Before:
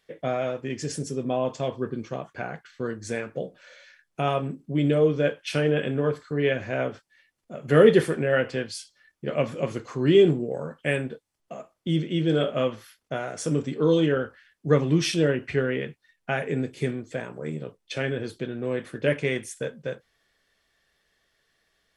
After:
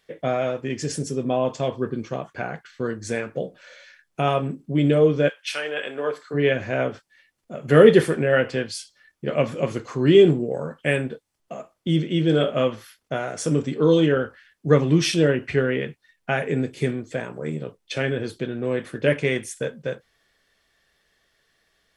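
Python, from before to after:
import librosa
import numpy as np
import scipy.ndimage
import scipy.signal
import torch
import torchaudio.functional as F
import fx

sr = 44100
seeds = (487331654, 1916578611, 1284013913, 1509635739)

y = fx.highpass(x, sr, hz=fx.line((5.28, 1400.0), (6.33, 350.0)), slope=12, at=(5.28, 6.33), fade=0.02)
y = y * librosa.db_to_amplitude(3.5)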